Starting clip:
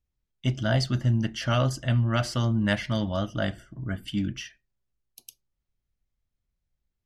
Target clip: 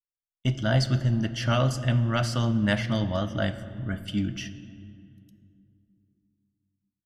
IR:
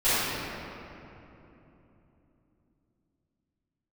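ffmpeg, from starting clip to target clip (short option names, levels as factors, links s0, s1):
-filter_complex "[0:a]agate=range=0.0251:threshold=0.00891:ratio=16:detection=peak,asplit=2[s0][s1];[1:a]atrim=start_sample=2205,asetrate=61740,aresample=44100,lowshelf=f=200:g=4.5[s2];[s1][s2]afir=irnorm=-1:irlink=0,volume=0.0473[s3];[s0][s3]amix=inputs=2:normalize=0"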